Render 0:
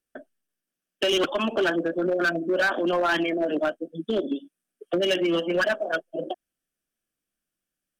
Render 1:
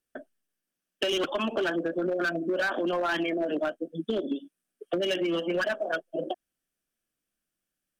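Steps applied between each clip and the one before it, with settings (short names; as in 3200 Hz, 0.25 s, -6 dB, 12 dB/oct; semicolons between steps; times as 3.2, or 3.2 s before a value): compressor, threshold -25 dBFS, peak gain reduction 5.5 dB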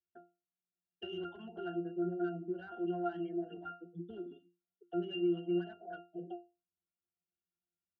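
octave resonator F, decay 0.28 s; gain +1 dB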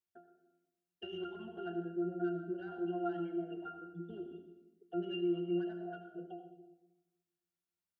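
reverb RT60 1.0 s, pre-delay 76 ms, DRR 6.5 dB; gain -1.5 dB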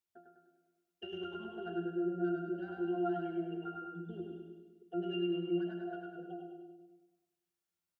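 feedback echo 0.101 s, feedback 51%, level -4 dB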